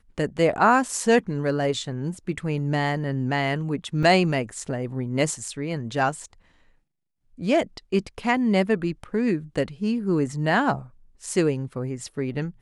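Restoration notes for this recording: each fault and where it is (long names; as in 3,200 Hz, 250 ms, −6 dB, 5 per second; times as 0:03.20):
0:04.03: drop-out 2.1 ms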